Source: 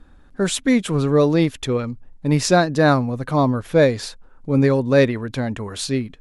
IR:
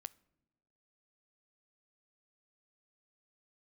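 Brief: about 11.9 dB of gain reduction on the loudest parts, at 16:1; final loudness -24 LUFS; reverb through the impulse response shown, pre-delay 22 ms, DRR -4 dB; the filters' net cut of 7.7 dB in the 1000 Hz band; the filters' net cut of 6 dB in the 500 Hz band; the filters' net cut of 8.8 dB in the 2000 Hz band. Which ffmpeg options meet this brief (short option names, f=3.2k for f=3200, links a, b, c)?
-filter_complex "[0:a]equalizer=f=500:t=o:g=-5,equalizer=f=1k:t=o:g=-7,equalizer=f=2k:t=o:g=-8.5,acompressor=threshold=-25dB:ratio=16,asplit=2[a][b];[1:a]atrim=start_sample=2205,adelay=22[c];[b][c]afir=irnorm=-1:irlink=0,volume=9dB[d];[a][d]amix=inputs=2:normalize=0,volume=1.5dB"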